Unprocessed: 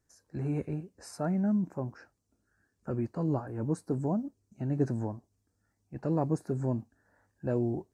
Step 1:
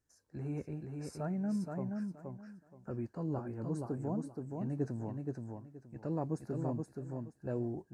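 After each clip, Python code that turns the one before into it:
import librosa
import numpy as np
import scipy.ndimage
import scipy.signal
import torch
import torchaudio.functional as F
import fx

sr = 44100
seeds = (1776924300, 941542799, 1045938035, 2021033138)

y = fx.echo_feedback(x, sr, ms=474, feedback_pct=22, wet_db=-4.0)
y = y * librosa.db_to_amplitude(-7.0)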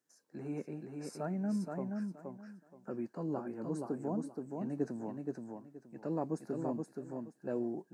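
y = scipy.signal.sosfilt(scipy.signal.butter(4, 180.0, 'highpass', fs=sr, output='sos'), x)
y = y * librosa.db_to_amplitude(1.5)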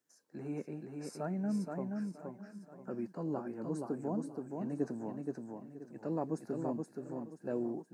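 y = x + 10.0 ** (-15.0 / 20.0) * np.pad(x, (int(1003 * sr / 1000.0), 0))[:len(x)]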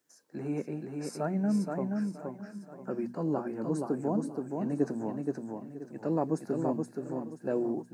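y = fx.hum_notches(x, sr, base_hz=60, count=4)
y = y * librosa.db_to_amplitude(6.5)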